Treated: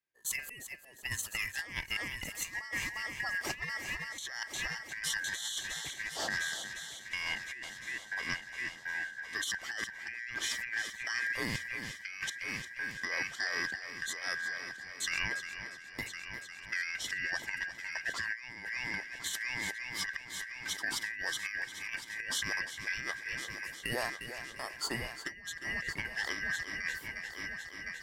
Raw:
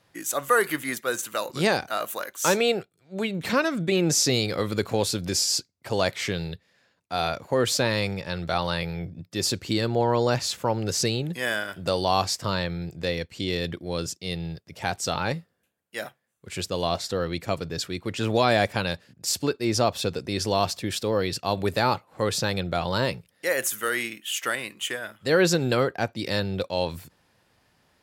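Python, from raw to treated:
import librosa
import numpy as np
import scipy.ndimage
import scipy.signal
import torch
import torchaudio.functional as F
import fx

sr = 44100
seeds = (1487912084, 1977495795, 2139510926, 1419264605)

p1 = fx.band_shuffle(x, sr, order='2143')
p2 = fx.step_gate(p1, sr, bpm=61, pattern='.x..xxxx.xxx.xx.', floor_db=-24.0, edge_ms=4.5)
p3 = p2 + fx.echo_heads(p2, sr, ms=353, heads='first and third', feedback_pct=59, wet_db=-12.5, dry=0)
p4 = fx.over_compress(p3, sr, threshold_db=-27.0, ratio=-0.5)
y = p4 * librosa.db_to_amplitude(-8.0)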